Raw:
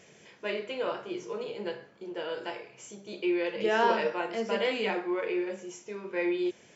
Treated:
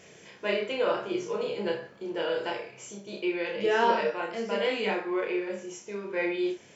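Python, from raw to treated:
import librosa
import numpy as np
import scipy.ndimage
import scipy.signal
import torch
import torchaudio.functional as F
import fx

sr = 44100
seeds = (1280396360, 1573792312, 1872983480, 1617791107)

y = fx.rider(x, sr, range_db=4, speed_s=2.0)
y = fx.room_early_taps(y, sr, ms=(30, 63), db=(-4.0, -11.5))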